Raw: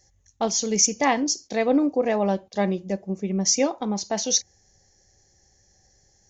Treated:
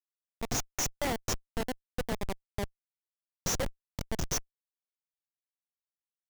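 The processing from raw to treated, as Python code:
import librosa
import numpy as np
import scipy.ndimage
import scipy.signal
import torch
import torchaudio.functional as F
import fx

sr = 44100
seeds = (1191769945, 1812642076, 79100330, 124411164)

y = fx.tilt_eq(x, sr, slope=3.0)
y = fx.fixed_phaser(y, sr, hz=1100.0, stages=6)
y = fx.schmitt(y, sr, flips_db=-20.5)
y = y * librosa.db_to_amplitude(-1.5)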